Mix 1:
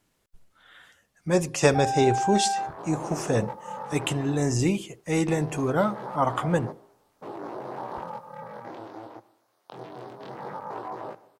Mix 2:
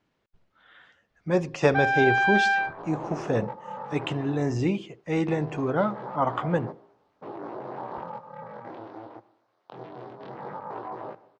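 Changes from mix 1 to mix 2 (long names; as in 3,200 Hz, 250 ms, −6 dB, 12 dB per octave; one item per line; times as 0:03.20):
speech: add low-shelf EQ 65 Hz −11.5 dB
first sound: remove pair of resonant band-passes 330 Hz, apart 2.6 octaves
master: add high-frequency loss of the air 200 metres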